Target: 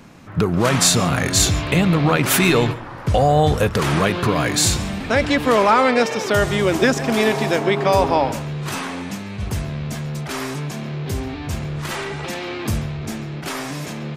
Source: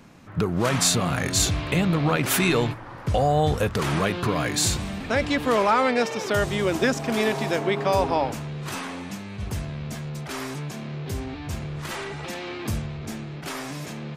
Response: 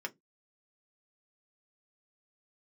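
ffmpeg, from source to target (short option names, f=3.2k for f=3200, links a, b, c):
-filter_complex "[0:a]asplit=2[a][b];[1:a]atrim=start_sample=2205,adelay=137[c];[b][c]afir=irnorm=-1:irlink=0,volume=-16dB[d];[a][d]amix=inputs=2:normalize=0,volume=5.5dB"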